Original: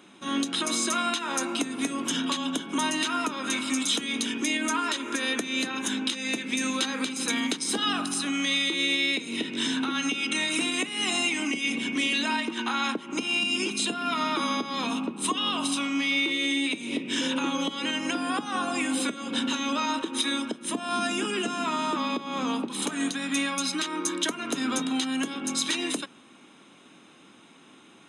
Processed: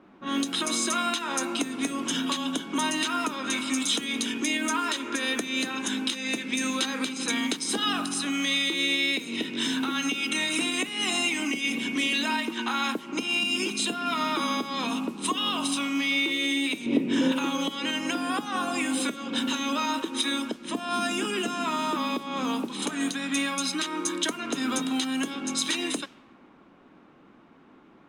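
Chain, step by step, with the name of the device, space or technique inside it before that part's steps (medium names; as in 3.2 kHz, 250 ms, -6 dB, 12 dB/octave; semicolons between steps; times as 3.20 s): cassette deck with a dynamic noise filter (white noise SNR 25 dB; level-controlled noise filter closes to 1.1 kHz, open at -24.5 dBFS); 16.86–17.32 s: tilt shelf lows +8 dB, about 1.5 kHz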